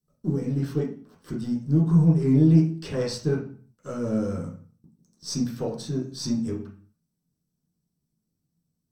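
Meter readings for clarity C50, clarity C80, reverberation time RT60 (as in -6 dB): 7.5 dB, 12.0 dB, 0.45 s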